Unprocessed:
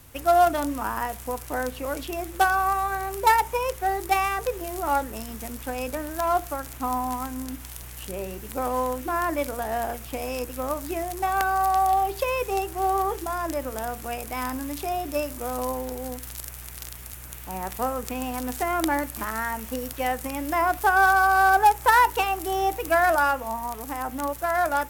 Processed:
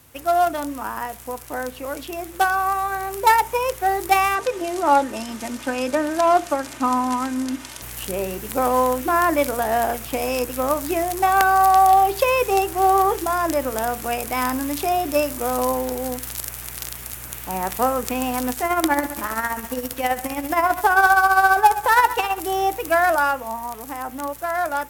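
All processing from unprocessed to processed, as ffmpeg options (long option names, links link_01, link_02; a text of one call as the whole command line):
ffmpeg -i in.wav -filter_complex "[0:a]asettb=1/sr,asplit=3[link_01][link_02][link_03];[link_01]atrim=end=4.354[link_04];[link_02]atrim=start=4.35:end=7.82,asetpts=PTS-STARTPTS,afade=type=in:duration=0.004:curve=qsin,afade=type=out:start_time=3.466:duration=0.004:curve=qsin,highpass=120,lowpass=7500,aecho=1:1:3.3:0.5,atrim=end_sample=153027[link_05];[link_03]atrim=start=7.816[link_06];[link_04][link_05]acrossfade=duration=0.004:curve1=hsin:curve2=qsin[link_07];[link_07][link_06]acrossfade=duration=0.004:curve1=qsin:curve2=hsin,asettb=1/sr,asplit=3[link_08][link_09][link_10];[link_08]atrim=end=18.524[link_11];[link_09]atrim=start=18.52:end=22.4,asetpts=PTS-STARTPTS,afade=type=in:duration=0.004:curve=qsin,afade=type=out:start_time=3.876:duration=0.004:curve=qsin,aecho=1:1:101|202|303|404|505|606:0.2|0.11|0.0604|0.0332|0.0183|0.01,atrim=end_sample=171108,tremolo=f=15:d=0.59[link_12];[link_10]atrim=start=22.396[link_13];[link_11][link_12]acrossfade=duration=0.004:curve1=hsin:curve2=qsin[link_14];[link_14][link_13]acrossfade=duration=0.004:curve1=qsin:curve2=hsin,highpass=frequency=120:poles=1,dynaudnorm=framelen=690:gausssize=11:maxgain=11.5dB" out.wav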